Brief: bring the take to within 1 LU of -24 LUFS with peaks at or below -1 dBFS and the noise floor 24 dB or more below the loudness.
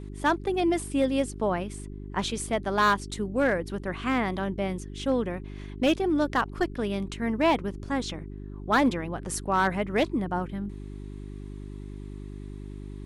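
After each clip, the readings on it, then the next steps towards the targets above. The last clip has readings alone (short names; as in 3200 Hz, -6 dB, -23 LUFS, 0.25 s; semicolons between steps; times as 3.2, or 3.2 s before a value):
clipped 0.4%; flat tops at -16.0 dBFS; hum 50 Hz; harmonics up to 400 Hz; hum level -36 dBFS; loudness -27.5 LUFS; peak -16.0 dBFS; loudness target -24.0 LUFS
-> clip repair -16 dBFS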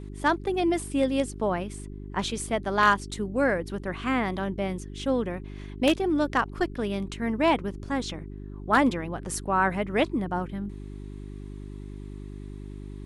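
clipped 0.0%; hum 50 Hz; harmonics up to 400 Hz; hum level -36 dBFS
-> de-hum 50 Hz, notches 8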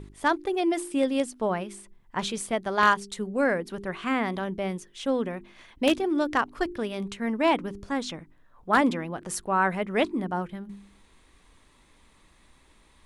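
hum none; loudness -27.5 LUFS; peak -7.0 dBFS; loudness target -24.0 LUFS
-> gain +3.5 dB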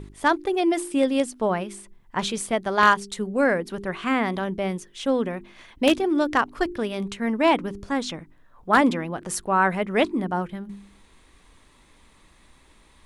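loudness -24.0 LUFS; peak -3.5 dBFS; noise floor -56 dBFS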